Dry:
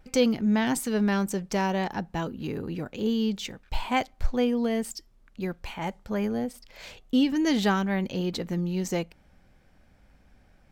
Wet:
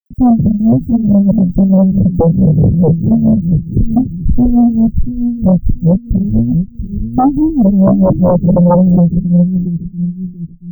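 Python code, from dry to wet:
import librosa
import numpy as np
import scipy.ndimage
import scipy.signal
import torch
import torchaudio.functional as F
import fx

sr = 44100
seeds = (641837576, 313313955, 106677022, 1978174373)

p1 = fx.delta_hold(x, sr, step_db=-41.5)
p2 = scipy.signal.sosfilt(scipy.signal.cheby2(4, 80, [930.0, 9200.0], 'bandstop', fs=sr, output='sos'), p1)
p3 = fx.dynamic_eq(p2, sr, hz=170.0, q=1.1, threshold_db=-48.0, ratio=4.0, max_db=4)
p4 = fx.small_body(p3, sr, hz=(400.0, 1600.0, 3800.0), ring_ms=25, db=9)
p5 = p4 + fx.echo_feedback(p4, sr, ms=686, feedback_pct=28, wet_db=-9.0, dry=0)
p6 = p5 * (1.0 - 0.74 / 2.0 + 0.74 / 2.0 * np.cos(2.0 * np.pi * 4.6 * (np.arange(len(p5)) / sr)))
p7 = fx.tilt_shelf(p6, sr, db=9.0, hz=970.0)
p8 = fx.notch_comb(p7, sr, f0_hz=210.0)
p9 = fx.dispersion(p8, sr, late='lows', ms=45.0, hz=2900.0)
p10 = fx.fold_sine(p9, sr, drive_db=17, ceiling_db=-10.5)
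y = F.gain(torch.from_numpy(p10), 6.0).numpy()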